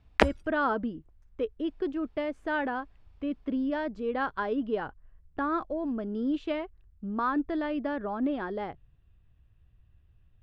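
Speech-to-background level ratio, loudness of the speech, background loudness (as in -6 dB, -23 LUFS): -4.0 dB, -32.0 LUFS, -28.0 LUFS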